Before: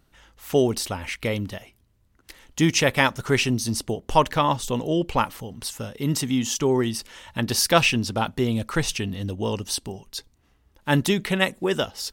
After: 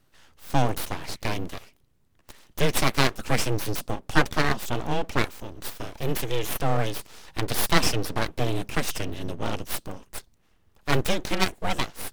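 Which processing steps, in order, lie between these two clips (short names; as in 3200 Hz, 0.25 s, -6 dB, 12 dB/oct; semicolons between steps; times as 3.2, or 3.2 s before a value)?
frequency shift -15 Hz; full-wave rectifier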